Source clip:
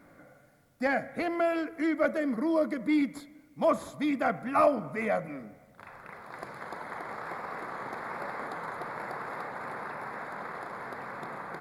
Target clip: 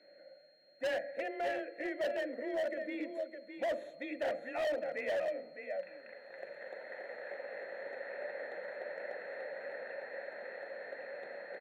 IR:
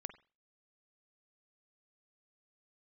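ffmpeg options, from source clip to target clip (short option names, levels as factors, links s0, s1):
-filter_complex "[0:a]asuperstop=centerf=4900:order=4:qfactor=3.5,asplit=2[s0][s1];[s1]aecho=0:1:610:0.398[s2];[s0][s2]amix=inputs=2:normalize=0,aeval=exprs='val(0)+0.00282*sin(2*PI*4200*n/s)':c=same,asplit=3[s3][s4][s5];[s3]bandpass=f=530:t=q:w=8,volume=1[s6];[s4]bandpass=f=1840:t=q:w=8,volume=0.501[s7];[s5]bandpass=f=2480:t=q:w=8,volume=0.355[s8];[s6][s7][s8]amix=inputs=3:normalize=0,bandreject=f=50:t=h:w=6,bandreject=f=100:t=h:w=6,bandreject=f=150:t=h:w=6,bandreject=f=200:t=h:w=6,bandreject=f=250:t=h:w=6,bandreject=f=300:t=h:w=6,bandreject=f=350:t=h:w=6,bandreject=f=400:t=h:w=6,bandreject=f=450:t=h:w=6,afreqshift=22,asoftclip=type=hard:threshold=0.015,volume=1.88"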